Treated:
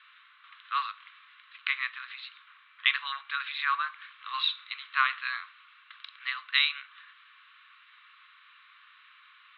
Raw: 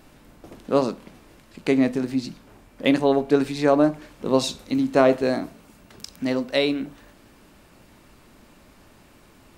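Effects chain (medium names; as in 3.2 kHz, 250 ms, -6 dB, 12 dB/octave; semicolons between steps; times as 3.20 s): Chebyshev band-pass 1.1–3.9 kHz, order 5; trim +4 dB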